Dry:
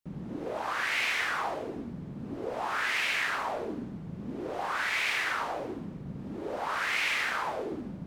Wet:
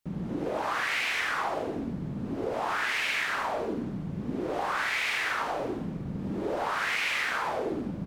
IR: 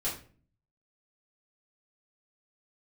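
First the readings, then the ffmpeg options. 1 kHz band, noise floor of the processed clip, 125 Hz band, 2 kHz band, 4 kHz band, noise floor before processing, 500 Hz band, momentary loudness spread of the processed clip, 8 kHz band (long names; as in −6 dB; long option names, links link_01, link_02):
+2.0 dB, −36 dBFS, +5.0 dB, +0.5 dB, +0.5 dB, −42 dBFS, +3.5 dB, 8 LU, +0.5 dB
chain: -filter_complex "[0:a]acompressor=threshold=-33dB:ratio=3,asplit=2[link_01][link_02];[link_02]adelay=47,volume=-11.5dB[link_03];[link_01][link_03]amix=inputs=2:normalize=0,asplit=2[link_04][link_05];[1:a]atrim=start_sample=2205,adelay=58[link_06];[link_05][link_06]afir=irnorm=-1:irlink=0,volume=-16dB[link_07];[link_04][link_07]amix=inputs=2:normalize=0,volume=5dB"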